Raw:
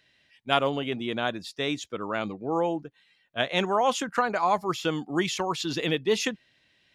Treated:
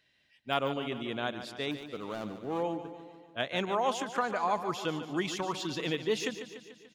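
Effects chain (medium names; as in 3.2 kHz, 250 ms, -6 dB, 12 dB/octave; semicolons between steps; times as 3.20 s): 1.71–2.63 s: median filter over 25 samples; de-esser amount 65%; feedback delay 146 ms, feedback 59%, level -11 dB; trim -6 dB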